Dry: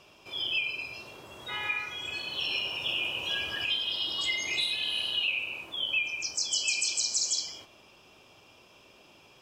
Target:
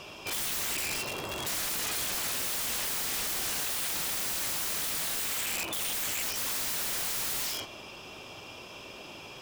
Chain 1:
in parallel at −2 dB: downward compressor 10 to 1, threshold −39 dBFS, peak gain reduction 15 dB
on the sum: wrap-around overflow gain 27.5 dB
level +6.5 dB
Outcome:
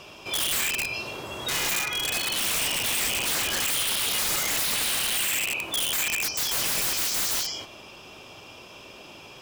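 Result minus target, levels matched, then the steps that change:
wrap-around overflow: distortion −17 dB
change: wrap-around overflow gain 34 dB

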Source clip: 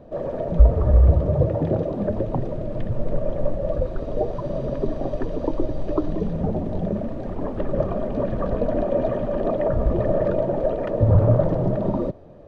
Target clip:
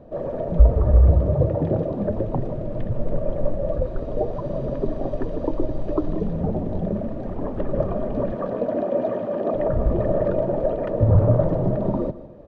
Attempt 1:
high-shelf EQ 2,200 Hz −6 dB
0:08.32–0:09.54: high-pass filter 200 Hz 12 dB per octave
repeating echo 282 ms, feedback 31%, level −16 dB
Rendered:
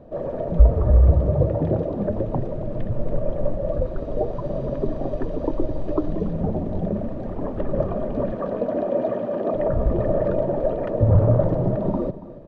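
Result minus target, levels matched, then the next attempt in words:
echo 127 ms late
high-shelf EQ 2,200 Hz −6 dB
0:08.32–0:09.54: high-pass filter 200 Hz 12 dB per octave
repeating echo 155 ms, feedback 31%, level −16 dB

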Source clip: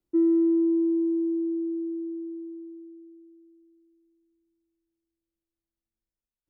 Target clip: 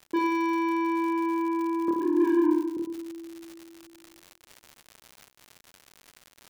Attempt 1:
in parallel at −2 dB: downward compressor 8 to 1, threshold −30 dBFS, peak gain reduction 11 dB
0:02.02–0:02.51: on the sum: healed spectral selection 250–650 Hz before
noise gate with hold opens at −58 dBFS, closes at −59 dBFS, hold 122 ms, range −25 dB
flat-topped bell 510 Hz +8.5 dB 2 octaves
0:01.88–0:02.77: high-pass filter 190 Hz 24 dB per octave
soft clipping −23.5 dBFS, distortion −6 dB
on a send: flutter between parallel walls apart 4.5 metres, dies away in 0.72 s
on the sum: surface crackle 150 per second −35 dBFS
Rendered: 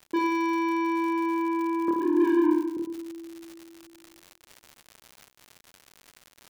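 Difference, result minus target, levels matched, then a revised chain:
downward compressor: peak gain reduction −6.5 dB
in parallel at −2 dB: downward compressor 8 to 1, threshold −37.5 dBFS, peak gain reduction 17.5 dB
0:02.02–0:02.51: on the sum: healed spectral selection 250–650 Hz before
noise gate with hold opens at −58 dBFS, closes at −59 dBFS, hold 122 ms, range −25 dB
flat-topped bell 510 Hz +8.5 dB 2 octaves
0:01.88–0:02.77: high-pass filter 190 Hz 24 dB per octave
soft clipping −23.5 dBFS, distortion −6 dB
on a send: flutter between parallel walls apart 4.5 metres, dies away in 0.72 s
on the sum: surface crackle 150 per second −35 dBFS

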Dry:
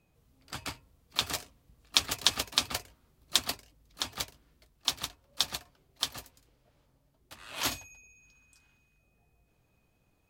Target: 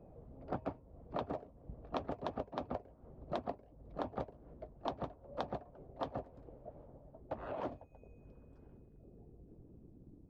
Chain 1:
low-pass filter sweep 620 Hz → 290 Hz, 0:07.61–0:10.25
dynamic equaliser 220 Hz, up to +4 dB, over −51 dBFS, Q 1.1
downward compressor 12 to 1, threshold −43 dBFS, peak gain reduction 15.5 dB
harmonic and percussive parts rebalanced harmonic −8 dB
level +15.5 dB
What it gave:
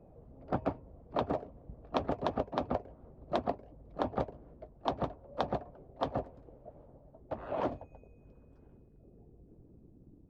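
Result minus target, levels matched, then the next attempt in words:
downward compressor: peak gain reduction −7.5 dB
low-pass filter sweep 620 Hz → 290 Hz, 0:07.61–0:10.25
dynamic equaliser 220 Hz, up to +4 dB, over −51 dBFS, Q 1.1
downward compressor 12 to 1, threshold −51 dBFS, peak gain reduction 23 dB
harmonic and percussive parts rebalanced harmonic −8 dB
level +15.5 dB

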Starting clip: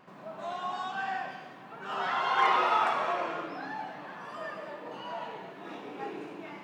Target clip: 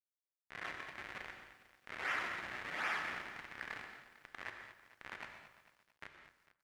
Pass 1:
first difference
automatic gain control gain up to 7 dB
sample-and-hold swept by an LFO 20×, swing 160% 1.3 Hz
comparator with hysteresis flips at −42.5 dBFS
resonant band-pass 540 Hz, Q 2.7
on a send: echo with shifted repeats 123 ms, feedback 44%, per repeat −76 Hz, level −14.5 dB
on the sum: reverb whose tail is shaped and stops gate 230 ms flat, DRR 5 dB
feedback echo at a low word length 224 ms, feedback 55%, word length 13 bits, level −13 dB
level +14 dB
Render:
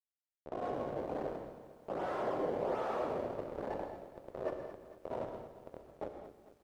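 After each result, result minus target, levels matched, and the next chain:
500 Hz band +16.0 dB; sample-and-hold swept by an LFO: distortion −13 dB
first difference
automatic gain control gain up to 7 dB
sample-and-hold swept by an LFO 20×, swing 160% 1.3 Hz
comparator with hysteresis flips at −42.5 dBFS
resonant band-pass 1,900 Hz, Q 2.7
on a send: echo with shifted repeats 123 ms, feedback 44%, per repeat −76 Hz, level −14.5 dB
on the sum: reverb whose tail is shaped and stops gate 230 ms flat, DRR 5 dB
feedback echo at a low word length 224 ms, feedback 55%, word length 13 bits, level −13 dB
level +14 dB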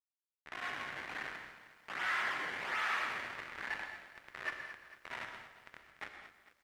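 sample-and-hold swept by an LFO: distortion −13 dB
first difference
automatic gain control gain up to 7 dB
sample-and-hold swept by an LFO 52×, swing 160% 1.3 Hz
comparator with hysteresis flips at −42.5 dBFS
resonant band-pass 1,900 Hz, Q 2.7
on a send: echo with shifted repeats 123 ms, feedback 44%, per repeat −76 Hz, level −14.5 dB
on the sum: reverb whose tail is shaped and stops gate 230 ms flat, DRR 5 dB
feedback echo at a low word length 224 ms, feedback 55%, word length 13 bits, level −13 dB
level +14 dB

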